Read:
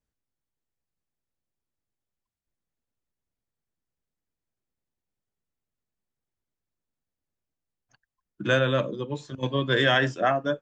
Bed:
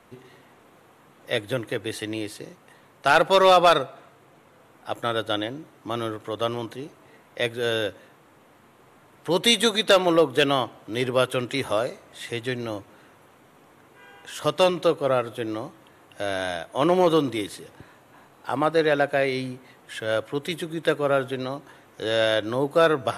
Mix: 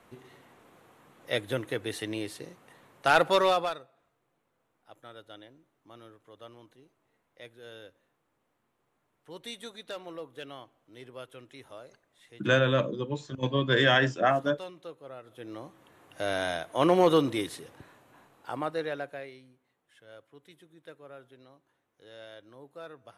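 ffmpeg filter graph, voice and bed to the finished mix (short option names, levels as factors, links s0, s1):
-filter_complex "[0:a]adelay=4000,volume=0.891[s0];[1:a]volume=6.31,afade=t=out:st=3.25:d=0.52:silence=0.11885,afade=t=in:st=15.22:d=1.08:silence=0.1,afade=t=out:st=17.37:d=2.03:silence=0.0668344[s1];[s0][s1]amix=inputs=2:normalize=0"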